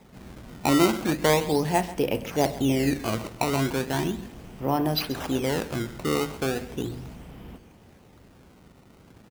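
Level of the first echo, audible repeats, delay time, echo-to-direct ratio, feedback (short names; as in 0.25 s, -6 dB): -16.5 dB, 2, 0.134 s, -16.0 dB, 27%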